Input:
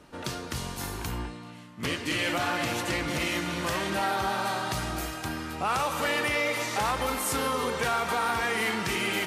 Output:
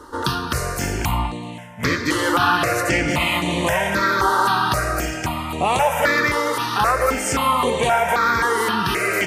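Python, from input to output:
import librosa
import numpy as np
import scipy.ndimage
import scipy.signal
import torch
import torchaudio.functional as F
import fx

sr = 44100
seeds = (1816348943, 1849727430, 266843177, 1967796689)

p1 = fx.peak_eq(x, sr, hz=880.0, db=6.5, octaves=1.6)
p2 = fx.notch(p1, sr, hz=800.0, q=15.0)
p3 = fx.rider(p2, sr, range_db=4, speed_s=2.0)
p4 = p2 + F.gain(torch.from_numpy(p3), 2.0).numpy()
p5 = fx.phaser_held(p4, sr, hz=3.8, low_hz=660.0, high_hz=5200.0)
y = F.gain(torch.from_numpy(p5), 3.0).numpy()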